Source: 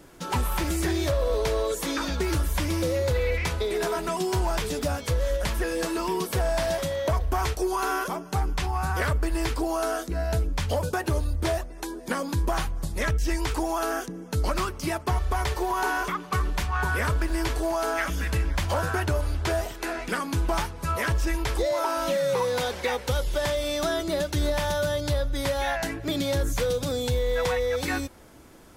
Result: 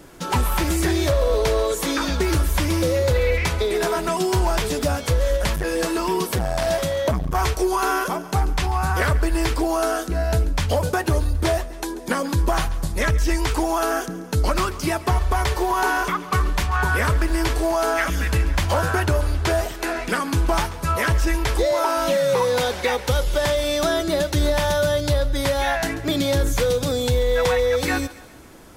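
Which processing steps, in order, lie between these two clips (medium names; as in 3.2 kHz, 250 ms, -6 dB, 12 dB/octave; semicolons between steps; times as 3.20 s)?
on a send: thinning echo 138 ms, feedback 50%, level -17 dB; 5.55–7.35 s: on the sum: transformer saturation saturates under 180 Hz; trim +5.5 dB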